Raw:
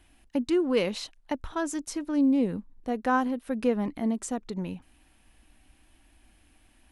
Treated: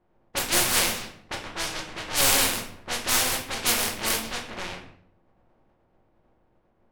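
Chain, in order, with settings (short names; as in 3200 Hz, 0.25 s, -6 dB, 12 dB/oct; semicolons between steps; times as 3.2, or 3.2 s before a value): spectral contrast lowered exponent 0.1; low-pass opened by the level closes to 630 Hz, open at -23.5 dBFS; shoebox room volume 100 m³, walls mixed, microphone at 0.97 m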